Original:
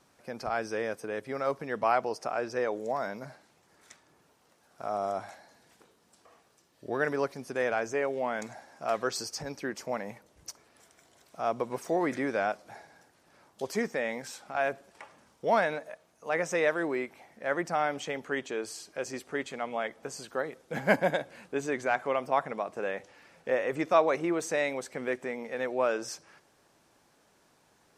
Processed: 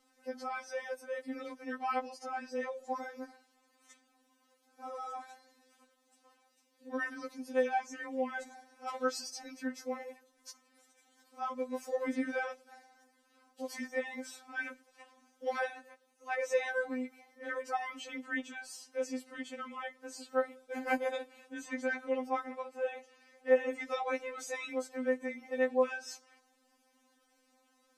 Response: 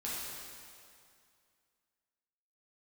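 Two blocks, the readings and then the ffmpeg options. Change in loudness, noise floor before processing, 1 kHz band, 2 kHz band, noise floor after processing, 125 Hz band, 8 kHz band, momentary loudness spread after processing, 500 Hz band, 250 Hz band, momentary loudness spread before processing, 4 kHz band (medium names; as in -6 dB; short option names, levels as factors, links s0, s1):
-5.5 dB, -66 dBFS, -6.5 dB, -5.0 dB, -73 dBFS, under -25 dB, -6.0 dB, 14 LU, -5.5 dB, -4.5 dB, 13 LU, -5.5 dB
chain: -filter_complex "[0:a]asplit=2[s0][s1];[1:a]atrim=start_sample=2205,afade=t=out:st=0.44:d=0.01,atrim=end_sample=19845,atrim=end_sample=3969[s2];[s1][s2]afir=irnorm=-1:irlink=0,volume=0.0501[s3];[s0][s3]amix=inputs=2:normalize=0,afftfilt=real='re*3.46*eq(mod(b,12),0)':imag='im*3.46*eq(mod(b,12),0)':win_size=2048:overlap=0.75,volume=0.668"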